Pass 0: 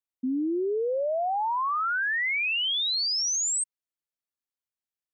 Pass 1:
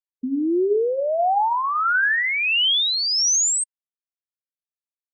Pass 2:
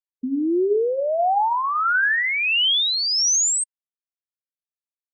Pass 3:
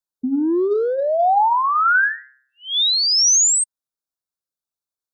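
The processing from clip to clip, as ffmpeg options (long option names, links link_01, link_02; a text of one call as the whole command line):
ffmpeg -i in.wav -af "tremolo=f=1.5:d=0.4,afftfilt=real='re*gte(hypot(re,im),0.00282)':imag='im*gte(hypot(re,im),0.00282)':win_size=1024:overlap=0.75,bandreject=frequency=131.1:width_type=h:width=4,bandreject=frequency=262.2:width_type=h:width=4,bandreject=frequency=393.3:width_type=h:width=4,bandreject=frequency=524.4:width_type=h:width=4,bandreject=frequency=655.5:width_type=h:width=4,bandreject=frequency=786.6:width_type=h:width=4,bandreject=frequency=917.7:width_type=h:width=4,bandreject=frequency=1048.8:width_type=h:width=4,bandreject=frequency=1179.9:width_type=h:width=4,bandreject=frequency=1311:width_type=h:width=4,bandreject=frequency=1442.1:width_type=h:width=4,bandreject=frequency=1573.2:width_type=h:width=4,bandreject=frequency=1704.3:width_type=h:width=4,bandreject=frequency=1835.4:width_type=h:width=4,bandreject=frequency=1966.5:width_type=h:width=4,volume=8.5dB" out.wav
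ffmpeg -i in.wav -af anull out.wav
ffmpeg -i in.wav -filter_complex "[0:a]acrossover=split=350|550|2600[link_01][link_02][link_03][link_04];[link_02]asoftclip=type=tanh:threshold=-34dB[link_05];[link_01][link_05][link_03][link_04]amix=inputs=4:normalize=0,asuperstop=centerf=2400:order=12:qfactor=1.3,volume=4.5dB" out.wav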